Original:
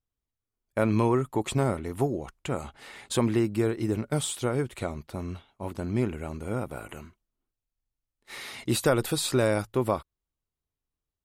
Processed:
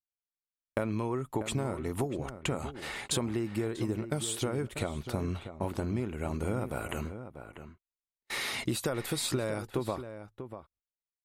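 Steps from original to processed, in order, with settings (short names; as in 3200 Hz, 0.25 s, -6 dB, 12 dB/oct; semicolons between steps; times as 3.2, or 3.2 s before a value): gate -49 dBFS, range -33 dB; compressor 12:1, threshold -35 dBFS, peak gain reduction 17.5 dB; outdoor echo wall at 110 m, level -10 dB; gain +6.5 dB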